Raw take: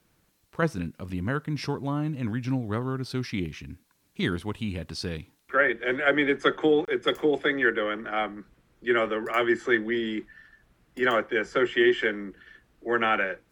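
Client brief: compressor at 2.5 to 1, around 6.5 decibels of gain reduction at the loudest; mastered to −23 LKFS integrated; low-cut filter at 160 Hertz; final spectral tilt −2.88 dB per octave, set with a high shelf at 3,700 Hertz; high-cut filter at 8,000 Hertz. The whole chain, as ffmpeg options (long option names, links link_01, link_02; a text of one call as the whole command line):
ffmpeg -i in.wav -af "highpass=160,lowpass=8000,highshelf=frequency=3700:gain=8.5,acompressor=threshold=-26dB:ratio=2.5,volume=7.5dB" out.wav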